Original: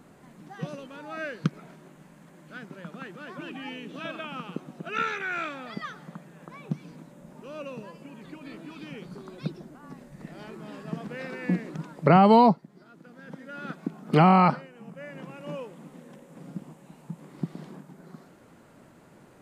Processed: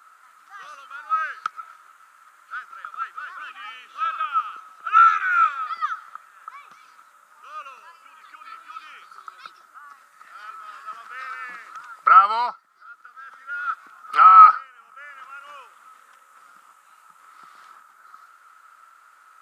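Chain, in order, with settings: treble shelf 3.5 kHz +7.5 dB; in parallel at -12 dB: saturation -23.5 dBFS, distortion -5 dB; on the sum: resonant high-pass 1.3 kHz, resonance Q 16; trim -6 dB

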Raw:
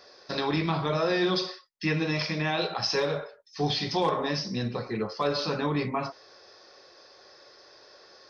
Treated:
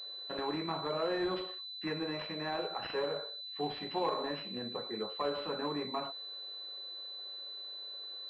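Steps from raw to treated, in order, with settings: high-pass 270 Hz 12 dB/octave; class-D stage that switches slowly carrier 4 kHz; trim -6.5 dB

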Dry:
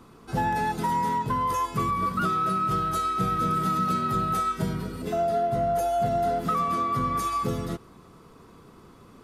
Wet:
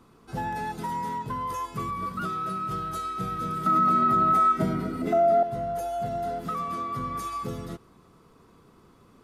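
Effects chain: 3.66–5.43 s: small resonant body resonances 290/660/1300/2000 Hz, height 14 dB, ringing for 20 ms; peak limiter -9.5 dBFS, peak gain reduction 5 dB; trim -5.5 dB

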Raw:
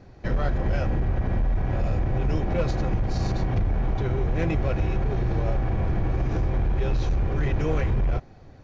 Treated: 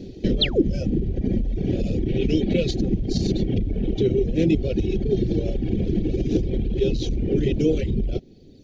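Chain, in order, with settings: 0.41–0.62 s: painted sound fall 250–4500 Hz -25 dBFS; 2.08–2.74 s: peaking EQ 2.6 kHz +7.5 dB 1.2 oct; reverb removal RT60 1.8 s; compression 3:1, threshold -30 dBFS, peak gain reduction 8.5 dB; FFT filter 120 Hz 0 dB, 210 Hz +11 dB, 420 Hz +10 dB, 1.1 kHz -27 dB, 3.3 kHz +9 dB, 5.2 kHz +5 dB; trim +7 dB

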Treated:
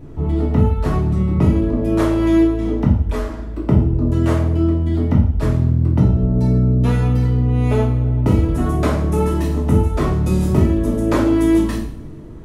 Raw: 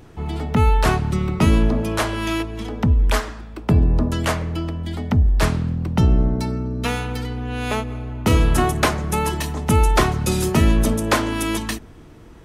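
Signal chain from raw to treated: tilt shelf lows +9.5 dB, about 650 Hz; compression 3:1, threshold -15 dBFS, peak gain reduction 10 dB; two-slope reverb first 0.53 s, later 2.8 s, from -27 dB, DRR -5 dB; trim -2.5 dB

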